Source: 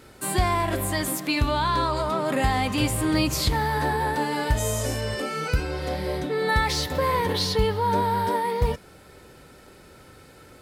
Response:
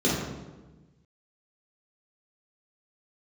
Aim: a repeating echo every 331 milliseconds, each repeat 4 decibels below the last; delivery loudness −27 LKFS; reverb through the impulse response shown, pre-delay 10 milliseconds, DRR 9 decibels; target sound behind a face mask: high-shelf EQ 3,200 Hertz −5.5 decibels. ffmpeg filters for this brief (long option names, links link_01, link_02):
-filter_complex "[0:a]aecho=1:1:331|662|993|1324|1655|1986|2317|2648|2979:0.631|0.398|0.25|0.158|0.0994|0.0626|0.0394|0.0249|0.0157,asplit=2[link_01][link_02];[1:a]atrim=start_sample=2205,adelay=10[link_03];[link_02][link_03]afir=irnorm=-1:irlink=0,volume=-23.5dB[link_04];[link_01][link_04]amix=inputs=2:normalize=0,highshelf=frequency=3200:gain=-5.5,volume=-4.5dB"